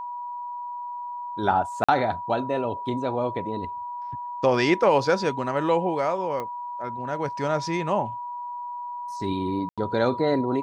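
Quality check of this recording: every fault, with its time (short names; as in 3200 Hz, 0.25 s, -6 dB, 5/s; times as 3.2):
tone 970 Hz -31 dBFS
1.84–1.89 gap 45 ms
6.4 pop -19 dBFS
9.69–9.78 gap 86 ms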